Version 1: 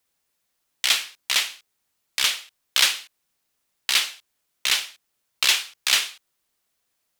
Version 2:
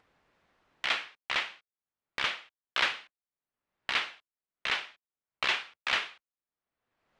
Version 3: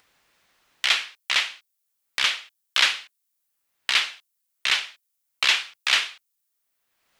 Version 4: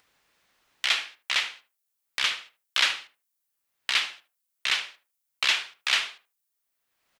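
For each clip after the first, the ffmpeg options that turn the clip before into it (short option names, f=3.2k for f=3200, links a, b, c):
-af "agate=range=-25dB:threshold=-40dB:ratio=16:detection=peak,lowpass=1.8k,acompressor=mode=upward:threshold=-41dB:ratio=2.5"
-af "crystalizer=i=8.5:c=0,volume=-2dB"
-filter_complex "[0:a]asplit=2[a][b];[b]adelay=76,lowpass=f=1k:p=1,volume=-9dB,asplit=2[c][d];[d]adelay=76,lowpass=f=1k:p=1,volume=0.22,asplit=2[e][f];[f]adelay=76,lowpass=f=1k:p=1,volume=0.22[g];[a][c][e][g]amix=inputs=4:normalize=0,volume=-3.5dB"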